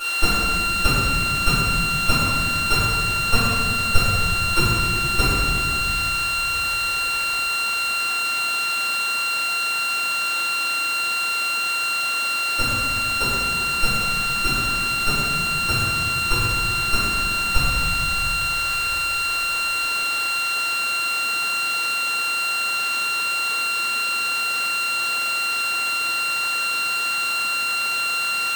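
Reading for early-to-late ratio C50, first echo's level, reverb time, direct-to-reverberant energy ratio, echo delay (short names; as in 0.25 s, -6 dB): -3.0 dB, none, 1.9 s, -13.5 dB, none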